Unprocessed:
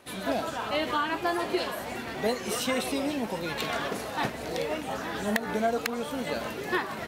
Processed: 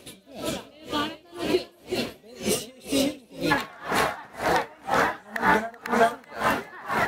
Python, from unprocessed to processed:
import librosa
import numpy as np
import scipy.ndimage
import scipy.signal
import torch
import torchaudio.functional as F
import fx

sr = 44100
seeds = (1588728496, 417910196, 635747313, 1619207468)

y = fx.band_shelf(x, sr, hz=1200.0, db=fx.steps((0.0, -10.0), (3.5, 8.5)), octaves=1.7)
y = y + 10.0 ** (-6.0 / 20.0) * np.pad(y, (int(380 * sr / 1000.0), 0))[:len(y)]
y = y * 10.0 ** (-31 * (0.5 - 0.5 * np.cos(2.0 * np.pi * 2.0 * np.arange(len(y)) / sr)) / 20.0)
y = y * librosa.db_to_amplitude(8.5)